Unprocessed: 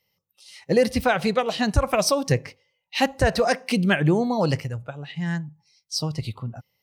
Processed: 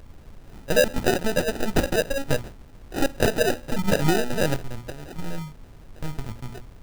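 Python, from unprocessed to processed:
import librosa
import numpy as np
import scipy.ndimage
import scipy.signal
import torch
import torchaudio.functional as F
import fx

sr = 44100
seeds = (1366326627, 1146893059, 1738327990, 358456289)

y = fx.lpc_vocoder(x, sr, seeds[0], excitation='pitch_kept', order=10)
y = fx.dmg_noise_colour(y, sr, seeds[1], colour='brown', level_db=-42.0)
y = fx.hum_notches(y, sr, base_hz=60, count=7)
y = fx.sample_hold(y, sr, seeds[2], rate_hz=1100.0, jitter_pct=0)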